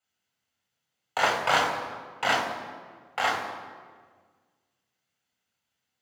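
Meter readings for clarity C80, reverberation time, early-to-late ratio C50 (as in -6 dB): 7.0 dB, 1.6 s, 5.5 dB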